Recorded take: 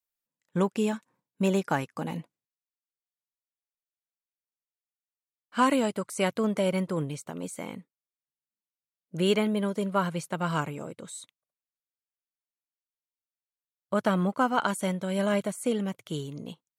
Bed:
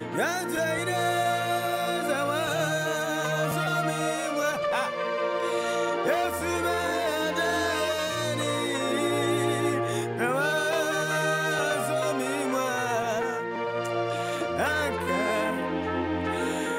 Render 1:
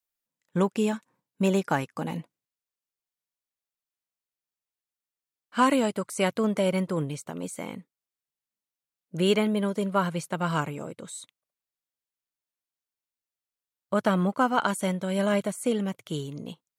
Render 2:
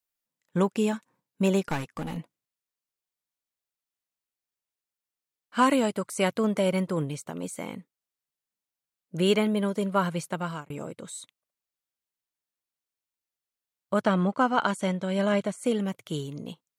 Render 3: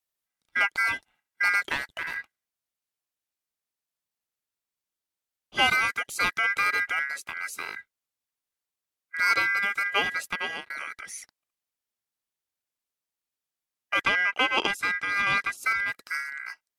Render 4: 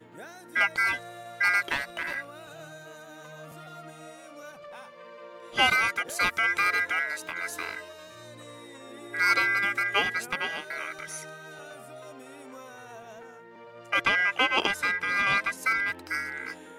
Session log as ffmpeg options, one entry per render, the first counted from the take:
-af "volume=1.5dB"
-filter_complex "[0:a]asettb=1/sr,asplit=3[a][b][c];[a]atrim=end=1.634[d];[b]atrim=start=1.63:end=2.17,asetpts=PTS-STARTPTS,afade=t=in:d=0.004:c=qsin,afade=t=out:st=0.536:d=0.004:c=qsin,aeval=exprs='clip(val(0),-1,0.02)':c=same[e];[c]atrim=start=2.166[f];[d][e]acrossfade=d=0.004:c1=hsin:c2=qsin[g];[g][f]acrossfade=d=0.004:c1=qsin:c2=hsin,asettb=1/sr,asplit=3[h][i][j];[h]atrim=end=14.014[k];[i]atrim=start=14.01:end=15.63,asetpts=PTS-STARTPTS,afade=t=in:d=0.004:c=qsin,afade=t=out:st=1.616:d=0.004:c=qsin,lowpass=7k[l];[j]atrim=start=15.626[m];[k][l]acrossfade=d=0.004:c1=hsin:c2=qsin[n];[n][m]acrossfade=d=0.004:c1=qsin:c2=hsin,asplit=2[o][p];[o]atrim=end=10.7,asetpts=PTS-STARTPTS,afade=t=out:st=10.3:d=0.4[q];[p]atrim=start=10.7,asetpts=PTS-STARTPTS,afade=t=in:d=0.004:c=hsin[r];[q][r]concat=n=2:v=0:a=1"
-filter_complex "[0:a]aeval=exprs='val(0)*sin(2*PI*1800*n/s)':c=same,asplit=2[a][b];[b]asoftclip=type=tanh:threshold=-24.5dB,volume=-6.5dB[c];[a][c]amix=inputs=2:normalize=0"
-filter_complex "[1:a]volume=-18dB[a];[0:a][a]amix=inputs=2:normalize=0"

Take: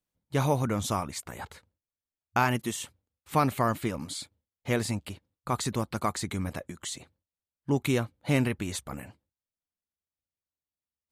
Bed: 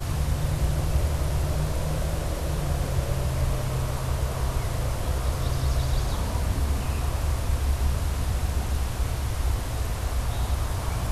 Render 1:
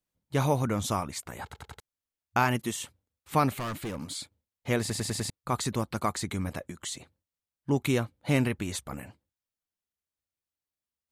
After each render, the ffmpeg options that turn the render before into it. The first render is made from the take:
-filter_complex "[0:a]asettb=1/sr,asplit=3[a][b][c];[a]atrim=end=3.574[d];[b]atrim=start=3.57:end=4.15,asetpts=PTS-STARTPTS,afade=t=in:d=0.004:c=qsin,afade=t=out:st=0.576:d=0.004:c=qsin,volume=31dB,asoftclip=hard,volume=-31dB[e];[c]atrim=start=4.146[f];[d][e]acrossfade=d=0.004:c1=hsin:c2=qsin[g];[g][f]acrossfade=d=0.004:c1=qsin:c2=hsin,asplit=10[h][i][j][k][l][m][n][o][p][q];[h]atrim=end=1.532[r];[i]atrim=start=1.438:end=1.532[s];[j]atrim=start=1.438:end=1.532[t];[k]atrim=start=1.438:end=1.532[u];[l]atrim=start=1.798:end=4.902[v];[m]atrim=start=4.798:end=4.902[w];[n]atrim=start=4.798:end=4.902[x];[o]atrim=start=4.798:end=4.902[y];[p]atrim=start=4.798:end=4.902[z];[q]atrim=start=5.298[aa];[r][s]acrossfade=d=0.004:c1=hsin:c2=hsin[ab];[ab][t]acrossfade=d=0.004:c1=hsin:c2=hsin[ac];[ac][u]acrossfade=d=0.004:c1=hsin:c2=hsin[ad];[ad][v]acrossfade=d=0.004:c1=hsin:c2=hsin[ae];[ae][w]acrossfade=d=0.004:c1=hsin:c2=hsin[af];[af][x]acrossfade=d=0.004:c1=hsin:c2=hsin[ag];[ag][y]acrossfade=d=0.004:c1=hsin:c2=hsin[ah];[ah][z]acrossfade=d=0.004:c1=hsin:c2=hsin[ai];[ai][aa]acrossfade=d=0.004:c1=hsin:c2=hsin"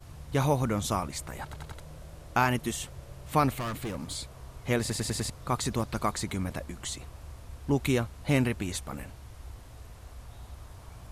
-filter_complex "[1:a]volume=-19dB[a];[0:a][a]amix=inputs=2:normalize=0"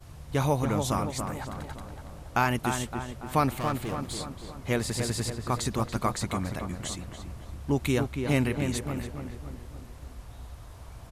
-filter_complex "[0:a]asplit=2[a][b];[b]adelay=283,lowpass=f=2.1k:p=1,volume=-5.5dB,asplit=2[c][d];[d]adelay=283,lowpass=f=2.1k:p=1,volume=0.54,asplit=2[e][f];[f]adelay=283,lowpass=f=2.1k:p=1,volume=0.54,asplit=2[g][h];[h]adelay=283,lowpass=f=2.1k:p=1,volume=0.54,asplit=2[i][j];[j]adelay=283,lowpass=f=2.1k:p=1,volume=0.54,asplit=2[k][l];[l]adelay=283,lowpass=f=2.1k:p=1,volume=0.54,asplit=2[m][n];[n]adelay=283,lowpass=f=2.1k:p=1,volume=0.54[o];[a][c][e][g][i][k][m][o]amix=inputs=8:normalize=0"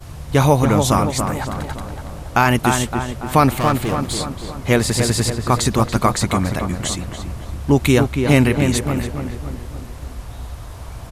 -af "volume=12dB,alimiter=limit=-2dB:level=0:latency=1"

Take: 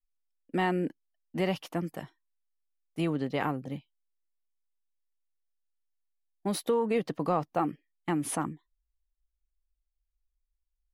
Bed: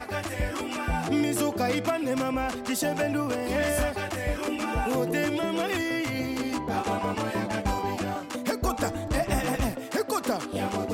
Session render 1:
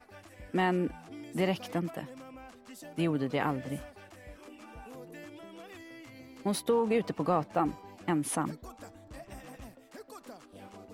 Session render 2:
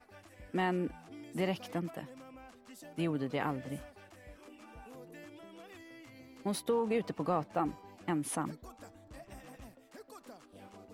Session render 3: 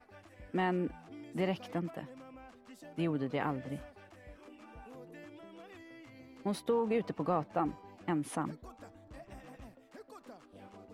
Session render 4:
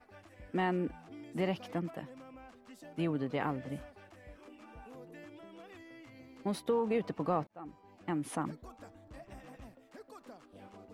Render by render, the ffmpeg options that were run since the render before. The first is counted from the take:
-filter_complex "[1:a]volume=-20.5dB[a];[0:a][a]amix=inputs=2:normalize=0"
-af "volume=-4dB"
-af "aemphasis=mode=reproduction:type=cd"
-filter_complex "[0:a]asplit=2[a][b];[a]atrim=end=7.47,asetpts=PTS-STARTPTS,afade=t=out:st=7.466:d=0.004:c=hsin[c];[b]atrim=start=7.47,asetpts=PTS-STARTPTS,afade=t=in:d=0.8[d];[c][d]concat=n=2:v=0:a=1"

